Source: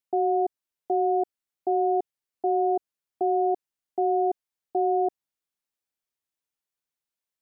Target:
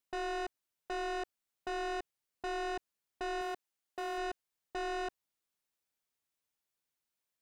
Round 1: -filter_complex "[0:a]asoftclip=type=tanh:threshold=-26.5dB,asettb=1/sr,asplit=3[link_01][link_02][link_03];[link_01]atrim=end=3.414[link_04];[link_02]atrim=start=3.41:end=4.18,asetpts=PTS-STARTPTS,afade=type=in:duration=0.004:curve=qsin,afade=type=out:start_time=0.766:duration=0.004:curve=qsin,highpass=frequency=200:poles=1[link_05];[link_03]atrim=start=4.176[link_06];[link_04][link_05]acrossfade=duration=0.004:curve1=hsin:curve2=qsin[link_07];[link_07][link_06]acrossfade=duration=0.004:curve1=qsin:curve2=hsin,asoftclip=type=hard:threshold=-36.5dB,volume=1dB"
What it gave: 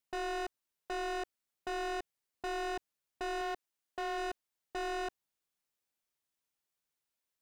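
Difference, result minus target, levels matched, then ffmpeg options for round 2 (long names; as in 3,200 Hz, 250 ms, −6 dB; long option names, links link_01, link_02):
soft clipping: distortion −5 dB
-filter_complex "[0:a]asoftclip=type=tanh:threshold=-35.5dB,asettb=1/sr,asplit=3[link_01][link_02][link_03];[link_01]atrim=end=3.414[link_04];[link_02]atrim=start=3.41:end=4.18,asetpts=PTS-STARTPTS,afade=type=in:duration=0.004:curve=qsin,afade=type=out:start_time=0.766:duration=0.004:curve=qsin,highpass=frequency=200:poles=1[link_05];[link_03]atrim=start=4.176[link_06];[link_04][link_05]acrossfade=duration=0.004:curve1=hsin:curve2=qsin[link_07];[link_07][link_06]acrossfade=duration=0.004:curve1=qsin:curve2=hsin,asoftclip=type=hard:threshold=-36.5dB,volume=1dB"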